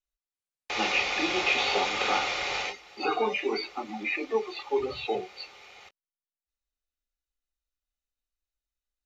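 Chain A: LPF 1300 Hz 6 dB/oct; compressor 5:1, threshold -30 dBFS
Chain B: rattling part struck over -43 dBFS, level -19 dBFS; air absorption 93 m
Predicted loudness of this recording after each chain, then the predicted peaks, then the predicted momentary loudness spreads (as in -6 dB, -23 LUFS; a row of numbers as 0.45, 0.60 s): -35.0, -28.5 LUFS; -20.0, -12.5 dBFS; 7, 9 LU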